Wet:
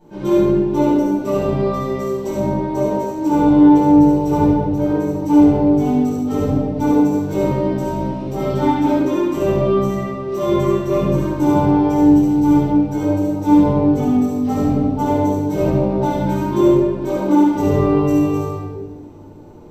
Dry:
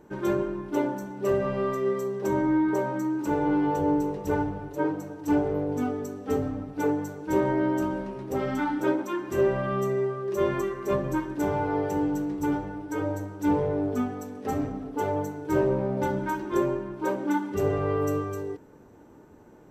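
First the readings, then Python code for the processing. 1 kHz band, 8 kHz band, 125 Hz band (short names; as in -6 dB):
+9.0 dB, n/a, +12.5 dB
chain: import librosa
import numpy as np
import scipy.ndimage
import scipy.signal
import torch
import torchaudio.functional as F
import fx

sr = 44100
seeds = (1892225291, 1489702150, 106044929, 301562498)

y = fx.graphic_eq_15(x, sr, hz=(1600, 4000, 10000), db=(-11, 4, -4))
y = y + 10.0 ** (-3.5 / 20.0) * np.pad(y, (int(72 * sr / 1000.0), 0))[:len(y)]
y = fx.room_shoebox(y, sr, seeds[0], volume_m3=750.0, walls='mixed', distance_m=8.1)
y = F.gain(torch.from_numpy(y), -5.5).numpy()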